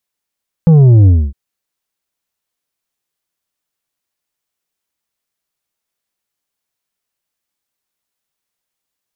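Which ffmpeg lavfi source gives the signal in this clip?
ffmpeg -f lavfi -i "aevalsrc='0.631*clip((0.66-t)/0.26,0,1)*tanh(2.11*sin(2*PI*170*0.66/log(65/170)*(exp(log(65/170)*t/0.66)-1)))/tanh(2.11)':duration=0.66:sample_rate=44100" out.wav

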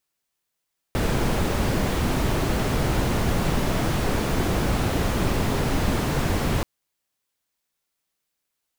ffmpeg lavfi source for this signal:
ffmpeg -f lavfi -i "anoisesrc=color=brown:amplitude=0.372:duration=5.68:sample_rate=44100:seed=1" out.wav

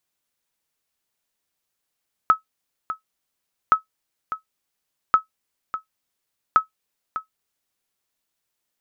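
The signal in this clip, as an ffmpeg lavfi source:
ffmpeg -f lavfi -i "aevalsrc='0.531*(sin(2*PI*1290*mod(t,1.42))*exp(-6.91*mod(t,1.42)/0.12)+0.237*sin(2*PI*1290*max(mod(t,1.42)-0.6,0))*exp(-6.91*max(mod(t,1.42)-0.6,0)/0.12))':duration=5.68:sample_rate=44100" out.wav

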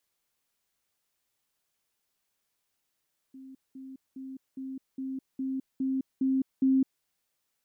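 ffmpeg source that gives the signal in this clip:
ffmpeg -f lavfi -i "aevalsrc='pow(10,(-44+3*floor(t/0.41))/20)*sin(2*PI*265*t)*clip(min(mod(t,0.41),0.21-mod(t,0.41))/0.005,0,1)':duration=3.69:sample_rate=44100" out.wav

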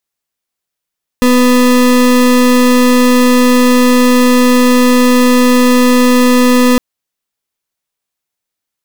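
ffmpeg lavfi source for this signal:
ffmpeg -f lavfi -i "aevalsrc='0.422*(2*lt(mod(249*t,1),0.33)-1)':duration=5.56:sample_rate=44100" out.wav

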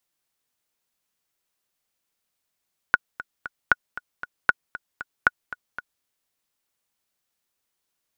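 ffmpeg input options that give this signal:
ffmpeg -f lavfi -i "aevalsrc='pow(10,(-2.5-16.5*gte(mod(t,3*60/232),60/232))/20)*sin(2*PI*1460*mod(t,60/232))*exp(-6.91*mod(t,60/232)/0.03)':duration=3.1:sample_rate=44100" out.wav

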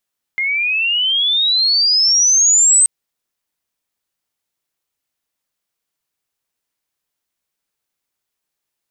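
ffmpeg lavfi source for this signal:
ffmpeg -f lavfi -i "aevalsrc='pow(10,(-15.5+8*t/2.48)/20)*sin(2*PI*2100*2.48/log(8300/2100)*(exp(log(8300/2100)*t/2.48)-1))':duration=2.48:sample_rate=44100" out.wav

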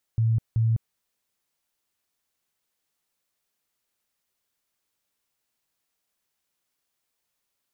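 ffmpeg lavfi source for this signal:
ffmpeg -f lavfi -i "aevalsrc='0.119*sin(2*PI*113*mod(t,0.38))*lt(mod(t,0.38),23/113)':duration=0.76:sample_rate=44100" out.wav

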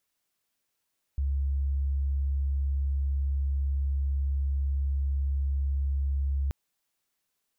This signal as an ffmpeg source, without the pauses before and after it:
ffmpeg -f lavfi -i "sine=frequency=69:duration=5.33:sample_rate=44100,volume=-6.44dB" out.wav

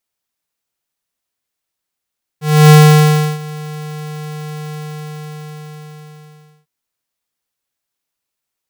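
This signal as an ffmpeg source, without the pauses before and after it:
ffmpeg -f lavfi -i "aevalsrc='0.668*(2*lt(mod(152*t,1),0.5)-1)':duration=4.25:sample_rate=44100,afade=type=in:duration=0.289,afade=type=out:start_time=0.289:duration=0.683:silence=0.075,afade=type=out:start_time=2.29:duration=1.96" out.wav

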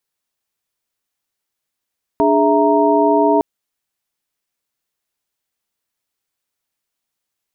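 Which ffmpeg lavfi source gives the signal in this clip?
ffmpeg -f lavfi -i "aevalsrc='0.158*(sin(2*PI*293.66*t)+sin(2*PI*415.3*t)+sin(2*PI*659.26*t)+sin(2*PI*932.33*t))':duration=1.21:sample_rate=44100" out.wav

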